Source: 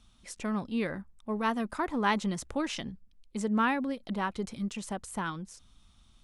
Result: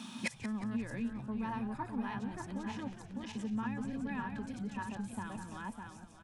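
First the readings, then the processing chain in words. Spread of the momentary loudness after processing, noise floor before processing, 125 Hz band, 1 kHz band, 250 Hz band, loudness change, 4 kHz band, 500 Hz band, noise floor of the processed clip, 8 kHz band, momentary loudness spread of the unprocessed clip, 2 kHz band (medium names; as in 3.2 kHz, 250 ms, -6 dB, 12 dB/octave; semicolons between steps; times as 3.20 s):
6 LU, -61 dBFS, -3.0 dB, -9.5 dB, -4.5 dB, -7.0 dB, -10.0 dB, -12.0 dB, -53 dBFS, -9.0 dB, 14 LU, -8.0 dB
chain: backward echo that repeats 302 ms, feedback 42%, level 0 dB; compression, threshold -30 dBFS, peak gain reduction 10 dB; inverted gate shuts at -39 dBFS, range -29 dB; high-pass 170 Hz 24 dB/octave; small resonant body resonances 230/920/1700/2500 Hz, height 12 dB; frequency-shifting echo 180 ms, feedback 47%, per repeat -99 Hz, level -12 dB; trim +16.5 dB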